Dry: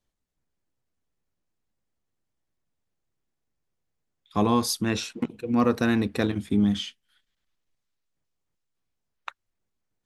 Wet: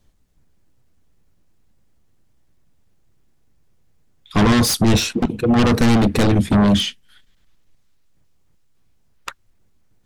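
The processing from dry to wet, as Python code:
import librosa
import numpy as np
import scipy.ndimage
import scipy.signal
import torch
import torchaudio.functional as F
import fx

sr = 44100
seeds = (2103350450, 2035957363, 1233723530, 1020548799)

p1 = fx.fold_sine(x, sr, drive_db=18, ceiling_db=-8.5)
p2 = x + (p1 * 10.0 ** (-10.0 / 20.0))
y = fx.low_shelf(p2, sr, hz=260.0, db=9.5)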